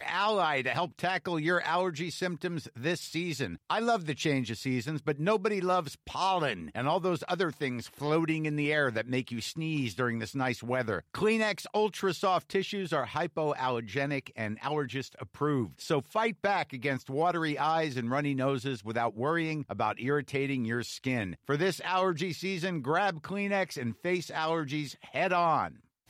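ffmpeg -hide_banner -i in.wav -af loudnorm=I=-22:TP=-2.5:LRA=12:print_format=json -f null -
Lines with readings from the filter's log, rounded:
"input_i" : "-31.0",
"input_tp" : "-16.9",
"input_lra" : "1.3",
"input_thresh" : "-41.1",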